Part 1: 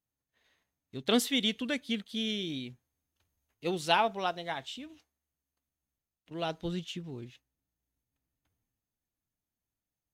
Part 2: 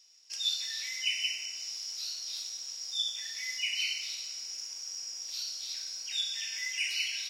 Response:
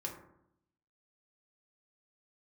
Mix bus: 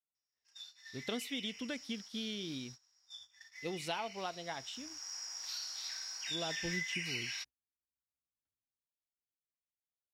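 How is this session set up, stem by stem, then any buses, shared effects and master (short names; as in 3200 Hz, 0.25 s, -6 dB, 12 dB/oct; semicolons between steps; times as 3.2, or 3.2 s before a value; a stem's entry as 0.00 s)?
-4.5 dB, 0.00 s, no send, compressor 4:1, threshold -32 dBFS, peak gain reduction 10 dB
4.4 s -14.5 dB -> 5.15 s -4 dB, 0.15 s, no send, band shelf 1200 Hz +12 dB; compressor 6:1, threshold -32 dBFS, peak gain reduction 7.5 dB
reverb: off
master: gate -50 dBFS, range -18 dB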